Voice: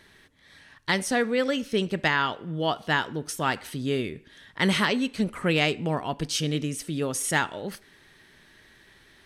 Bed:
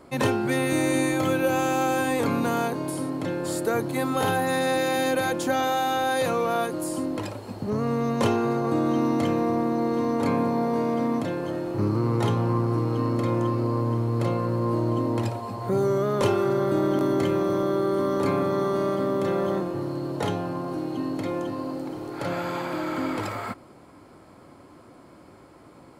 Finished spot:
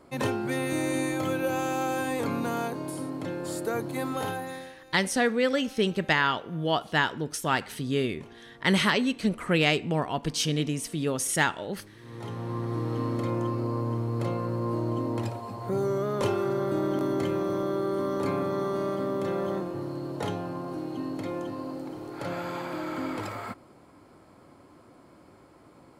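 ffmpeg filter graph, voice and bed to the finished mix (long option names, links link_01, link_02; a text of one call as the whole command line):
ffmpeg -i stem1.wav -i stem2.wav -filter_complex "[0:a]adelay=4050,volume=0dB[link_01];[1:a]volume=19dB,afade=type=out:start_time=4.07:duration=0.68:silence=0.0668344,afade=type=in:start_time=12:duration=0.92:silence=0.0630957[link_02];[link_01][link_02]amix=inputs=2:normalize=0" out.wav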